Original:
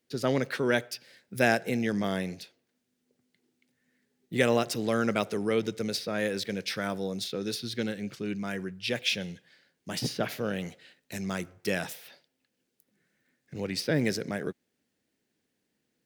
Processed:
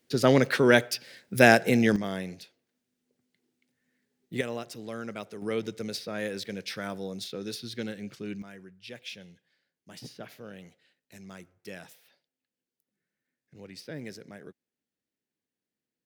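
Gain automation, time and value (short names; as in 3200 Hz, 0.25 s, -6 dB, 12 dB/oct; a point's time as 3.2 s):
+6.5 dB
from 1.96 s -3 dB
from 4.41 s -10.5 dB
from 5.42 s -3.5 dB
from 8.42 s -13 dB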